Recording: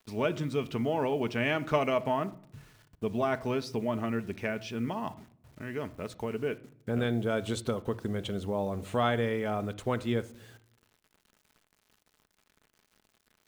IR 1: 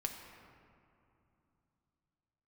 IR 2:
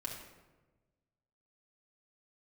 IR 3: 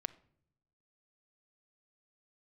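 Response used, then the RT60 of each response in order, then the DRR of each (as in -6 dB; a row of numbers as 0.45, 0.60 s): 3; 2.8 s, 1.2 s, not exponential; 2.0, -3.0, 12.0 dB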